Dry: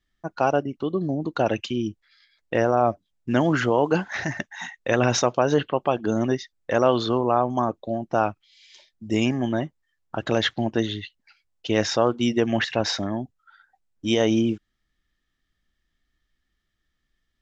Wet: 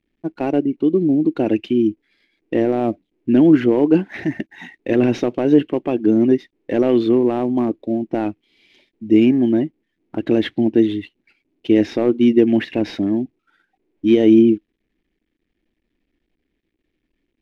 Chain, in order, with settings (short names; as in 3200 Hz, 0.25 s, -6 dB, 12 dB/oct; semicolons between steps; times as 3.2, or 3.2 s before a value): CVSD 64 kbps; EQ curve 130 Hz 0 dB, 320 Hz +14 dB, 550 Hz -1 dB, 1300 Hz -10 dB, 2300 Hz +2 dB, 7800 Hz -19 dB